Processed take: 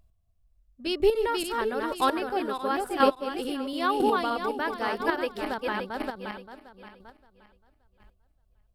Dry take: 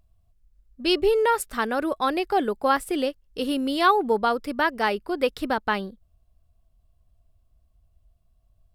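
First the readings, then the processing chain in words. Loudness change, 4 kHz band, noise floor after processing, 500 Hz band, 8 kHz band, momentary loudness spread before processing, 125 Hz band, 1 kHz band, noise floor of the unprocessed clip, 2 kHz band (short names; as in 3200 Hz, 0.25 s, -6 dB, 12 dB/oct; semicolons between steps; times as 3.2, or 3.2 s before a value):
-3.5 dB, -4.0 dB, -68 dBFS, -3.0 dB, -4.5 dB, 8 LU, n/a, -3.5 dB, -65 dBFS, -4.0 dB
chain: regenerating reverse delay 0.287 s, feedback 53%, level -2 dB; chopper 1 Hz, depth 60%, duty 10%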